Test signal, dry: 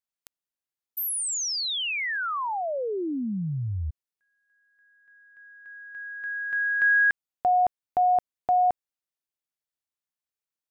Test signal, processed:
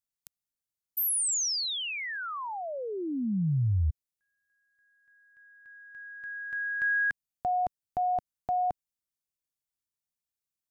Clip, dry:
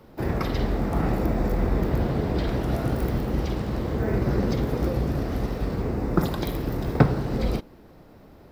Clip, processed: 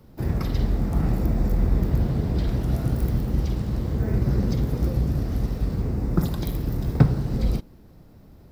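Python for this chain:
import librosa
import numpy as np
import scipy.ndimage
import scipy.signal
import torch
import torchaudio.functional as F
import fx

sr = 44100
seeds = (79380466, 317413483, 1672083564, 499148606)

y = fx.bass_treble(x, sr, bass_db=11, treble_db=8)
y = y * librosa.db_to_amplitude(-7.0)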